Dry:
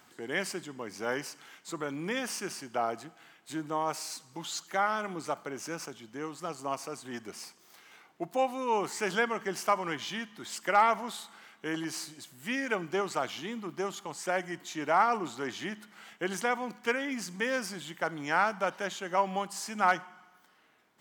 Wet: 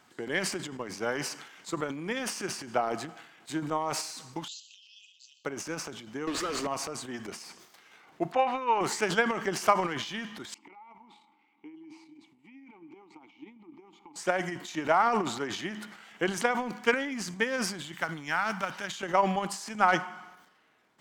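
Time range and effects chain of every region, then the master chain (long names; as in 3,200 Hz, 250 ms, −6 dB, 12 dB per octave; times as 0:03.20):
0:04.48–0:05.45: linear-phase brick-wall band-pass 2,500–7,800 Hz + high-shelf EQ 3,500 Hz −9.5 dB
0:06.27–0:06.67: phaser with its sweep stopped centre 330 Hz, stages 4 + mid-hump overdrive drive 36 dB, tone 2,100 Hz, clips at −24.5 dBFS
0:08.32–0:08.81: low-pass filter 2,000 Hz + tilt shelving filter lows −9.5 dB, about 670 Hz
0:10.54–0:14.16: downward compressor, threshold −39 dBFS + formant filter u
0:17.92–0:19.03: one scale factor per block 7 bits + parametric band 490 Hz −10 dB 1.8 octaves
whole clip: high-shelf EQ 11,000 Hz −9.5 dB; transient designer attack +8 dB, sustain +12 dB; level −2 dB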